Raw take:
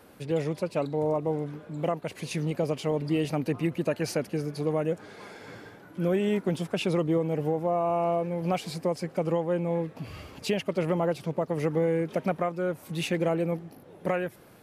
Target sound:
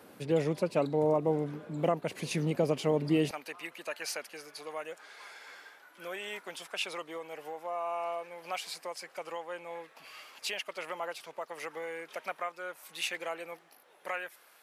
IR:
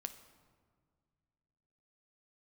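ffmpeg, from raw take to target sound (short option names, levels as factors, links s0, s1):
-af "asetnsamples=n=441:p=0,asendcmd='3.31 highpass f 1100',highpass=140"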